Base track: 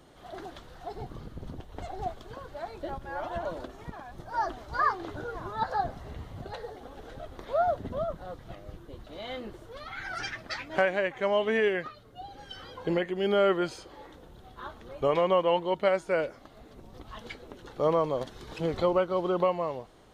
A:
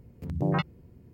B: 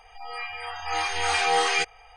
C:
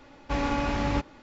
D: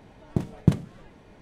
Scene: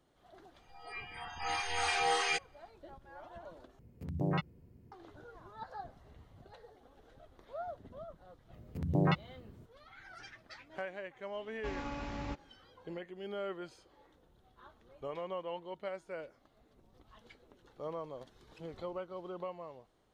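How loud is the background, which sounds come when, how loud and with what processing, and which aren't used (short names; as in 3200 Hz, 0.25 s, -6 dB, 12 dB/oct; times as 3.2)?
base track -16 dB
0.54 add B -8.5 dB + spectral noise reduction 7 dB
3.79 replace with A -6.5 dB
8.53 add A -2.5 dB
11.34 add C -13.5 dB
not used: D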